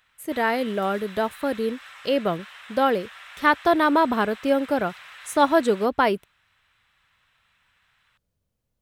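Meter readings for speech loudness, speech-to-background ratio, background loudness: −23.0 LKFS, 20.0 dB, −43.0 LKFS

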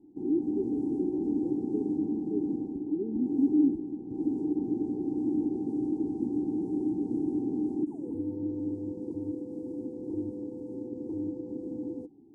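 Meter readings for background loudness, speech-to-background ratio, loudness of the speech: −32.5 LKFS, −0.5 dB, −33.0 LKFS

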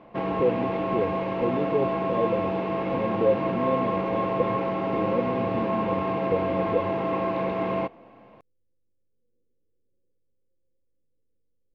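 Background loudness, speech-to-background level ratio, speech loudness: −27.0 LKFS, −3.0 dB, −30.0 LKFS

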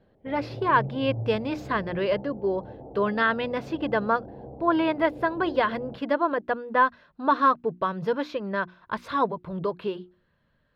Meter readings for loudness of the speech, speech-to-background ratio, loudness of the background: −26.5 LKFS, 13.5 dB, −40.0 LKFS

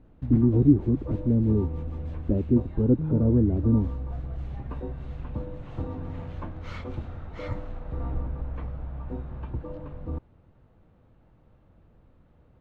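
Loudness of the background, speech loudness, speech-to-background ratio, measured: −35.5 LKFS, −23.5 LKFS, 12.0 dB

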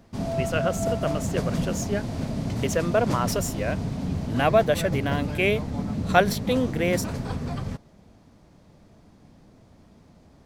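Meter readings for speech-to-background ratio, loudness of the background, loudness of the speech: 3.5 dB, −29.5 LKFS, −26.0 LKFS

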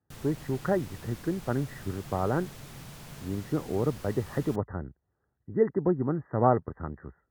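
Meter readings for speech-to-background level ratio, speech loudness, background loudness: 15.0 dB, −30.5 LKFS, −45.5 LKFS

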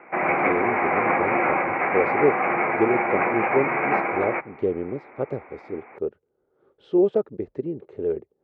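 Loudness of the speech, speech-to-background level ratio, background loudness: −27.5 LKFS, −5.0 dB, −22.5 LKFS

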